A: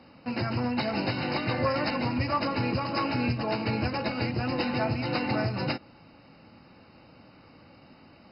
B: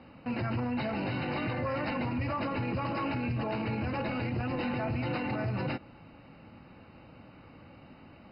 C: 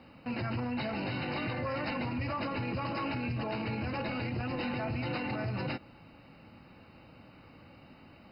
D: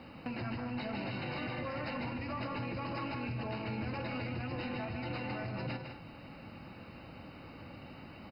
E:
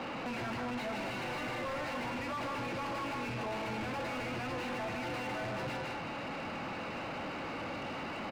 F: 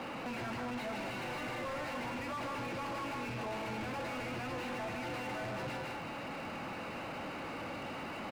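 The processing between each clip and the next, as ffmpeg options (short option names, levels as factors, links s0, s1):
-af "lowpass=f=3500:w=0.5412,lowpass=f=3500:w=1.3066,lowshelf=f=110:g=6.5,alimiter=level_in=1.12:limit=0.0631:level=0:latency=1:release=25,volume=0.891"
-af "highshelf=f=4500:g=11.5,volume=0.75"
-filter_complex "[0:a]acompressor=threshold=0.00891:ratio=6,aeval=exprs='0.0299*(cos(1*acos(clip(val(0)/0.0299,-1,1)))-cos(1*PI/2))+0.000299*(cos(6*acos(clip(val(0)/0.0299,-1,1)))-cos(6*PI/2))':c=same,asplit=2[s0][s1];[s1]aecho=0:1:154.5|204.1:0.447|0.251[s2];[s0][s2]amix=inputs=2:normalize=0,volume=1.58"
-filter_complex "[0:a]asplit=2[s0][s1];[s1]highpass=f=720:p=1,volume=50.1,asoftclip=type=tanh:threshold=0.0501[s2];[s0][s2]amix=inputs=2:normalize=0,lowpass=f=1700:p=1,volume=0.501,volume=0.631"
-af "aeval=exprs='sgn(val(0))*max(abs(val(0))-0.00141,0)':c=same,volume=0.891"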